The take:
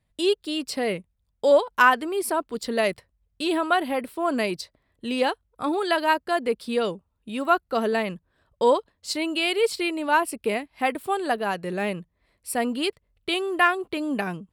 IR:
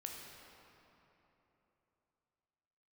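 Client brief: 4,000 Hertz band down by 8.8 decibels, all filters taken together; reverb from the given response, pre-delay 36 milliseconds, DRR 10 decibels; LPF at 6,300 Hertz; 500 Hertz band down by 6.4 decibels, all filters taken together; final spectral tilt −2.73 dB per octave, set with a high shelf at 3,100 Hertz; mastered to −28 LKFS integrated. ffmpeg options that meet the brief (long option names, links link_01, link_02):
-filter_complex "[0:a]lowpass=6300,equalizer=frequency=500:width_type=o:gain=-8,highshelf=frequency=3100:gain=-4.5,equalizer=frequency=4000:width_type=o:gain=-9,asplit=2[link_01][link_02];[1:a]atrim=start_sample=2205,adelay=36[link_03];[link_02][link_03]afir=irnorm=-1:irlink=0,volume=-7.5dB[link_04];[link_01][link_04]amix=inputs=2:normalize=0,volume=0.5dB"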